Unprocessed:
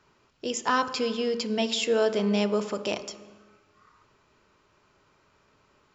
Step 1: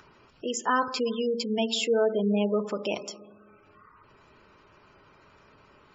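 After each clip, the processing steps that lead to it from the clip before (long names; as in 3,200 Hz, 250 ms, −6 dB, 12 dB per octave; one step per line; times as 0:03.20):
gate on every frequency bin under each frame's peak −20 dB strong
upward compression, threshold −48 dBFS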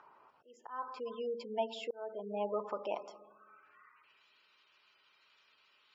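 volume swells 543 ms
band-pass filter sweep 900 Hz → 3,500 Hz, 0:03.22–0:04.28
level +1.5 dB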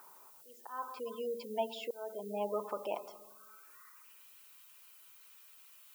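background noise violet −59 dBFS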